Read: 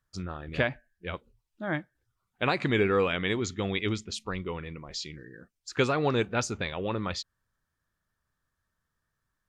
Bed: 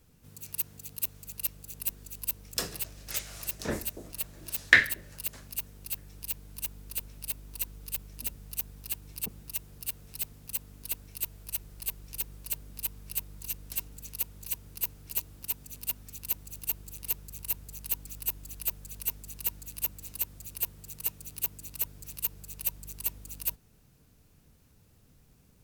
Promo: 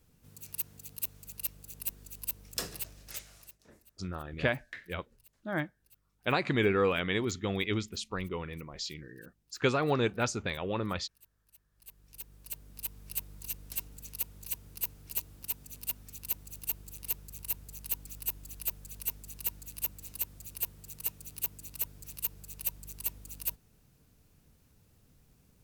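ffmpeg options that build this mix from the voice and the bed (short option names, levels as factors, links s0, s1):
-filter_complex "[0:a]adelay=3850,volume=0.794[s0];[1:a]volume=11.2,afade=t=out:st=2.82:d=0.77:silence=0.0668344,afade=t=in:st=11.71:d=1.45:silence=0.0595662[s1];[s0][s1]amix=inputs=2:normalize=0"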